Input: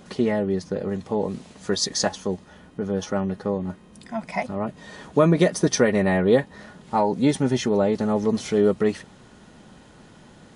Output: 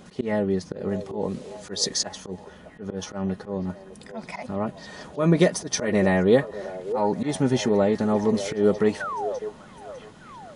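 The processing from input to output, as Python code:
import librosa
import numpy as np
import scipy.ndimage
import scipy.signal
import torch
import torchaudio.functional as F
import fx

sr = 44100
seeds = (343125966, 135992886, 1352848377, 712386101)

y = fx.auto_swell(x, sr, attack_ms=131.0)
y = fx.spec_paint(y, sr, seeds[0], shape='fall', start_s=9.0, length_s=0.39, low_hz=470.0, high_hz=1600.0, level_db=-30.0)
y = fx.echo_stepped(y, sr, ms=602, hz=530.0, octaves=0.7, feedback_pct=70, wet_db=-9.5)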